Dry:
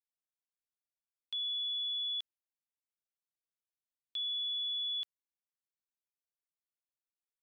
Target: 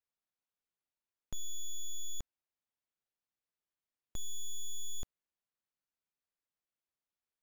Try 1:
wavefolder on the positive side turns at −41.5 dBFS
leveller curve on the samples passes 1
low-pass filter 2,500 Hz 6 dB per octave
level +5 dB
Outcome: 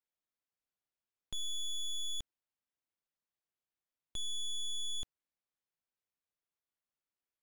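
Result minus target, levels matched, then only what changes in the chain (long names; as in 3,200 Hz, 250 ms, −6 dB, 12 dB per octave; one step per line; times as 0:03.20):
wavefolder on the positive side: distortion −11 dB
change: wavefolder on the positive side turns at −49.5 dBFS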